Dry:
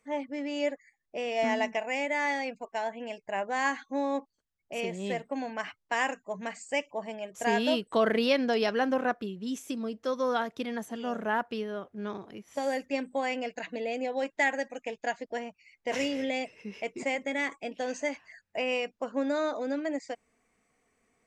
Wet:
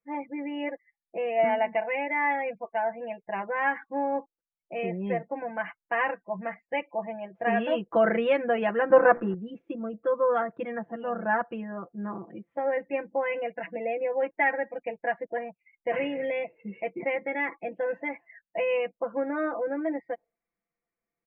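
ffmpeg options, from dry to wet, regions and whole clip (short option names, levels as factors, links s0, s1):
-filter_complex "[0:a]asettb=1/sr,asplit=3[s0][s1][s2];[s0]atrim=end=8.904[s3];[s1]atrim=start=8.9:end=9.34,asetpts=PTS-STARTPTS,afade=t=in:d=0.004:c=qsin,afade=t=out:st=0.436:d=0.004:c=qsin,bandreject=f=60:t=h:w=6,bandreject=f=120:t=h:w=6,bandreject=f=180:t=h:w=6,bandreject=f=240:t=h:w=6,bandreject=f=300:t=h:w=6,bandreject=f=360:t=h:w=6,bandreject=f=420:t=h:w=6,bandreject=f=480:t=h:w=6,acrusher=bits=9:dc=4:mix=0:aa=0.000001,equalizer=f=650:w=0.31:g=8[s4];[s2]atrim=start=9.336[s5];[s3][s4]acrossfade=d=0.004:c1=hsin:c2=qsin[s6];[s6][s5]acrossfade=d=0.004:c1=qsin:c2=hsin,lowpass=f=2300:w=0.5412,lowpass=f=2300:w=1.3066,afftdn=nr=20:nf=-49,aecho=1:1:5.9:0.96"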